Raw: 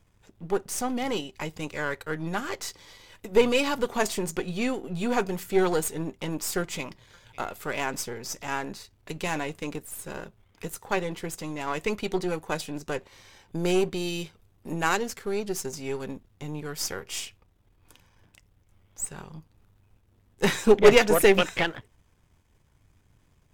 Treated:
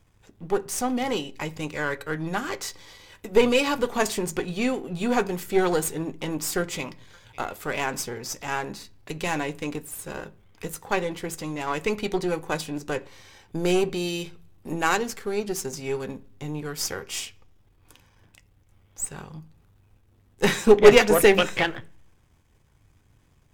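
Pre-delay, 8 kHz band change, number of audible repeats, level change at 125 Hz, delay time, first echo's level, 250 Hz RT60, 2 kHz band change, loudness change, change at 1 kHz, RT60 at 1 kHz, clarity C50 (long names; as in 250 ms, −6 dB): 3 ms, +2.0 dB, no echo audible, +1.5 dB, no echo audible, no echo audible, 0.70 s, +2.5 dB, +2.5 dB, +2.5 dB, 0.40 s, 22.5 dB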